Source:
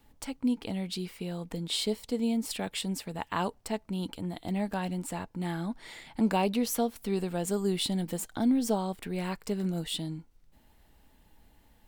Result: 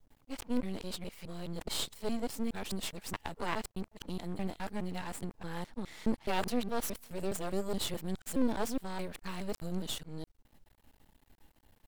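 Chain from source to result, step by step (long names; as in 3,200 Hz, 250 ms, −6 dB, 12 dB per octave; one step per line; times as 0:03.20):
reversed piece by piece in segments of 209 ms
half-wave rectification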